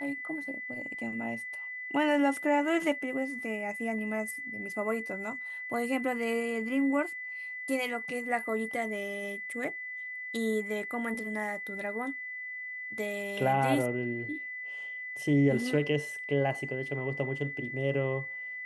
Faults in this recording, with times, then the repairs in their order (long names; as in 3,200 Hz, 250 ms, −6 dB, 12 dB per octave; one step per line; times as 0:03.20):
whistle 2,000 Hz −37 dBFS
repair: notch filter 2,000 Hz, Q 30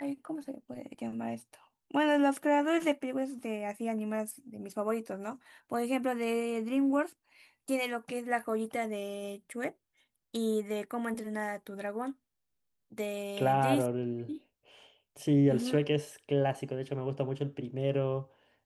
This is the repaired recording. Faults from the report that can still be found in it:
none of them is left